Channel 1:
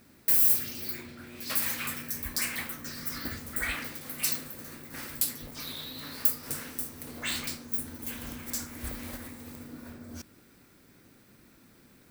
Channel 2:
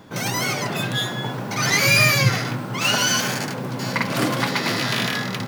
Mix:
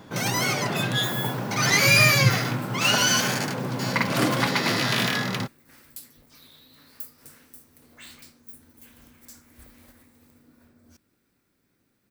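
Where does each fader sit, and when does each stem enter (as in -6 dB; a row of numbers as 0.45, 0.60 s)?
-13.0, -1.0 dB; 0.75, 0.00 s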